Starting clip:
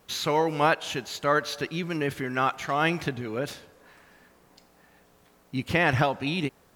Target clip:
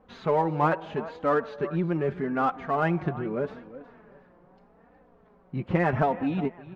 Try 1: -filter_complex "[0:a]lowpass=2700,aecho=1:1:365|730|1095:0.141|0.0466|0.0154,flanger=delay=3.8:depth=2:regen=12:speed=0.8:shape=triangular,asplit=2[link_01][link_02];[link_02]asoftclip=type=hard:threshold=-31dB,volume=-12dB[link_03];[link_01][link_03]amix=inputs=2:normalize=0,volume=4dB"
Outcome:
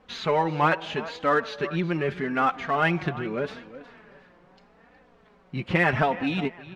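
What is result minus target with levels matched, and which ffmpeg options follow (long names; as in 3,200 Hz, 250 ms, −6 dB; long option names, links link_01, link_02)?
2,000 Hz band +6.0 dB
-filter_complex "[0:a]lowpass=1100,aecho=1:1:365|730|1095:0.141|0.0466|0.0154,flanger=delay=3.8:depth=2:regen=12:speed=0.8:shape=triangular,asplit=2[link_01][link_02];[link_02]asoftclip=type=hard:threshold=-31dB,volume=-12dB[link_03];[link_01][link_03]amix=inputs=2:normalize=0,volume=4dB"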